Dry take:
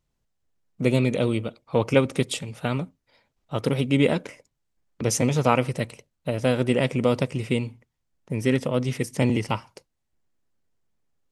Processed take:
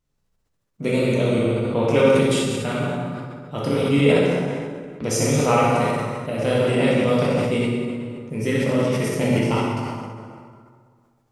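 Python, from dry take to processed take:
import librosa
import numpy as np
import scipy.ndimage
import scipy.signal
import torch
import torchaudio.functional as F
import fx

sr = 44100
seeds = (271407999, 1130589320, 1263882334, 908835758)

y = fx.echo_feedback(x, sr, ms=63, feedback_pct=52, wet_db=-7.0)
y = fx.rev_plate(y, sr, seeds[0], rt60_s=1.9, hf_ratio=0.65, predelay_ms=0, drr_db=-5.0)
y = fx.sustainer(y, sr, db_per_s=28.0)
y = y * 10.0 ** (-3.5 / 20.0)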